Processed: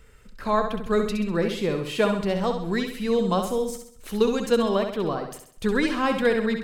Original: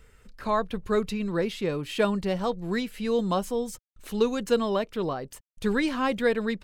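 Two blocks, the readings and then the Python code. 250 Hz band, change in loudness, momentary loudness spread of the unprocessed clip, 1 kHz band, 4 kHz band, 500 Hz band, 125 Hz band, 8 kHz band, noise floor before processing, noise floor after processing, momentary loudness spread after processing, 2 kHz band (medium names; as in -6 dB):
+3.0 dB, +3.0 dB, 7 LU, +3.0 dB, +3.0 dB, +3.0 dB, +3.0 dB, +3.0 dB, -62 dBFS, -51 dBFS, 8 LU, +3.0 dB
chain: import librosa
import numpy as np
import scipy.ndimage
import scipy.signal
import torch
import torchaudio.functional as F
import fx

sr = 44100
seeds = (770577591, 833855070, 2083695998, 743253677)

y = fx.room_flutter(x, sr, wall_m=11.3, rt60_s=0.59)
y = y * librosa.db_to_amplitude(2.0)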